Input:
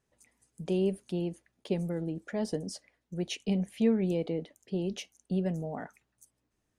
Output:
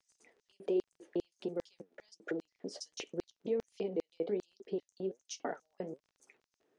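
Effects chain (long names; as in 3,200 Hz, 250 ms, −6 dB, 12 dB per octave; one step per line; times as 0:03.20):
slices reordered back to front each 165 ms, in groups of 3
low-shelf EQ 430 Hz +4.5 dB
downward compressor 4 to 1, threshold −37 dBFS, peak gain reduction 16 dB
flanger 1.3 Hz, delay 2.4 ms, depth 10 ms, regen +64%
auto-filter high-pass square 2.5 Hz 410–5,700 Hz
surface crackle 20 per second −60 dBFS
high-frequency loss of the air 120 metres
level +7.5 dB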